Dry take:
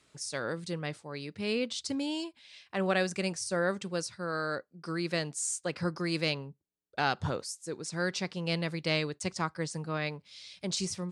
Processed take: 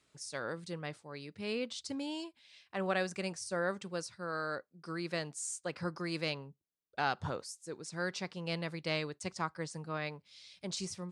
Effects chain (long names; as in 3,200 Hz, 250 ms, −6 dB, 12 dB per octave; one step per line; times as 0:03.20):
dynamic equaliser 1,000 Hz, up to +4 dB, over −43 dBFS, Q 0.77
level −6.5 dB